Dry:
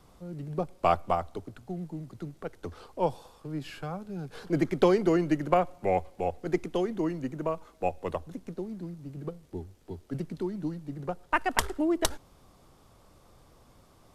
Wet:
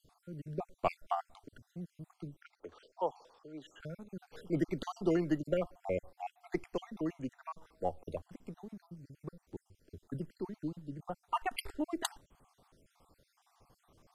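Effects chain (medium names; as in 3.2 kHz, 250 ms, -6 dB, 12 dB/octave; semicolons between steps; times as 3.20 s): random holes in the spectrogram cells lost 50%; 2.42–3.80 s: three-band isolator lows -19 dB, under 320 Hz, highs -23 dB, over 7.3 kHz; trim -5.5 dB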